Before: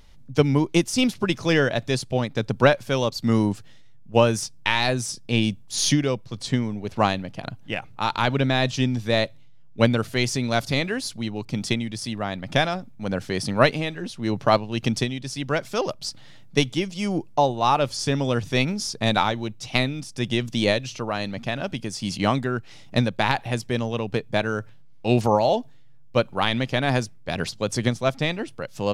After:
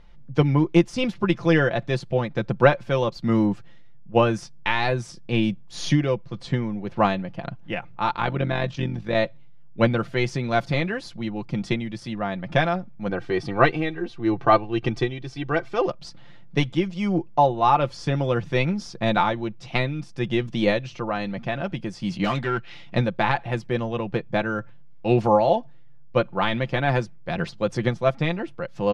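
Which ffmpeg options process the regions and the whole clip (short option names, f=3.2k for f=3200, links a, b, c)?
-filter_complex "[0:a]asettb=1/sr,asplit=3[a][b][c];[a]atrim=end=8.114[d];[b]atrim=start=8.11:end=9.15,asetpts=PTS-STARTPTS,afade=t=in:d=0.004:c=qsin,afade=t=out:st=1.036:d=0.004:c=qsin,highshelf=f=7.6k:g=-5,tremolo=f=47:d=0.621[e];[c]atrim=start=9.146[f];[d][e]acrossfade=d=0.004:c1=hsin:c2=qsin[g];[g][f]acrossfade=d=0.004:c1=qsin:c2=hsin,asettb=1/sr,asplit=3[h][i][j];[h]atrim=end=13.094[k];[i]atrim=start=13.09:end=15.88,asetpts=PTS-STARTPTS,afade=t=in:d=0.004:c=qsin,afade=t=out:st=2.786:d=0.004:c=qsin,highshelf=f=7.8k:g=-10,aecho=1:1:2.6:0.6,atrim=end_sample=123039[l];[j]atrim=start=15.876[m];[k][l]acrossfade=d=0.004:c1=hsin:c2=qsin[n];[n][m]acrossfade=d=0.004:c1=qsin:c2=hsin,asettb=1/sr,asplit=3[o][p][q];[o]atrim=end=22.244[r];[p]atrim=start=22.24:end=22.96,asetpts=PTS-STARTPTS,afade=t=in:d=0.004:c=qsin,afade=t=out:st=0.716:d=0.004:c=qsin,equalizer=f=3.1k:w=0.71:g=11,asoftclip=type=hard:threshold=-20dB[s];[q]atrim=start=22.956[t];[r][s]acrossfade=d=0.004:c1=hsin:c2=qsin[u];[u][t]acrossfade=d=0.004:c1=qsin:c2=hsin,lowpass=2k,aemphasis=mode=production:type=50fm,aecho=1:1:5.8:0.56"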